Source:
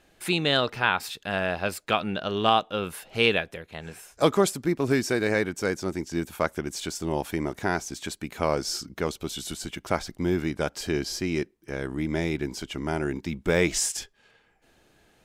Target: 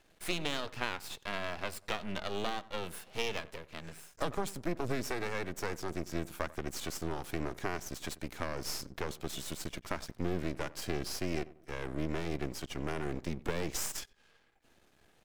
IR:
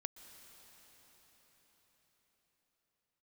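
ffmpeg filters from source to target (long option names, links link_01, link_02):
-filter_complex "[0:a]acrossover=split=190[link_01][link_02];[link_02]acompressor=threshold=-26dB:ratio=6[link_03];[link_01][link_03]amix=inputs=2:normalize=0,asplit=2[link_04][link_05];[link_05]adelay=93,lowpass=frequency=1200:poles=1,volume=-17.5dB,asplit=2[link_06][link_07];[link_07]adelay=93,lowpass=frequency=1200:poles=1,volume=0.38,asplit=2[link_08][link_09];[link_09]adelay=93,lowpass=frequency=1200:poles=1,volume=0.38[link_10];[link_04][link_06][link_08][link_10]amix=inputs=4:normalize=0,aeval=exprs='max(val(0),0)':channel_layout=same,volume=-2dB"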